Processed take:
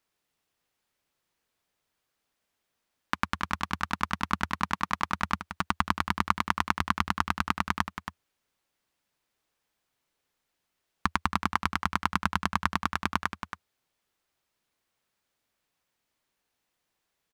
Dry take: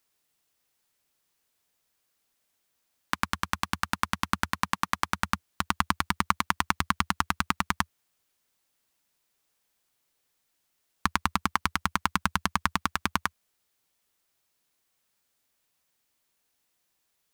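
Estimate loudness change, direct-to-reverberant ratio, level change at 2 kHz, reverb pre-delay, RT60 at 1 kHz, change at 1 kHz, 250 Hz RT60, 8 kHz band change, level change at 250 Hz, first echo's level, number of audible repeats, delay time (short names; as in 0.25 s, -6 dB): -0.5 dB, none, -0.5 dB, none, none, 0.0 dB, none, -6.5 dB, +0.5 dB, -10.0 dB, 1, 0.276 s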